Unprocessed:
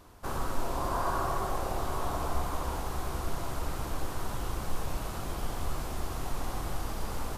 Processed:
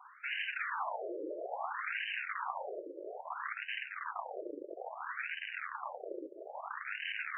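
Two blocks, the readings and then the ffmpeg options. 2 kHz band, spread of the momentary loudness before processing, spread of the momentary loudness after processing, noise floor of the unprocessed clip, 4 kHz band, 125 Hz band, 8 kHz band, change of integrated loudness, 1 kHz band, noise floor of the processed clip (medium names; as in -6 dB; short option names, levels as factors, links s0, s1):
+6.5 dB, 6 LU, 9 LU, -37 dBFS, -1.5 dB, under -40 dB, under -40 dB, -4.5 dB, -6.0 dB, -52 dBFS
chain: -af "asubboost=boost=8.5:cutoff=140,areverse,acompressor=threshold=0.0891:ratio=20,areverse,crystalizer=i=7:c=0,aeval=exprs='(mod(15.8*val(0)+1,2)-1)/15.8':c=same,flanger=delay=4.9:depth=6:regen=65:speed=1.5:shape=triangular,afftfilt=real='re*between(b*sr/1024,420*pow(2200/420,0.5+0.5*sin(2*PI*0.6*pts/sr))/1.41,420*pow(2200/420,0.5+0.5*sin(2*PI*0.6*pts/sr))*1.41)':imag='im*between(b*sr/1024,420*pow(2200/420,0.5+0.5*sin(2*PI*0.6*pts/sr))/1.41,420*pow(2200/420,0.5+0.5*sin(2*PI*0.6*pts/sr))*1.41)':win_size=1024:overlap=0.75,volume=2.37"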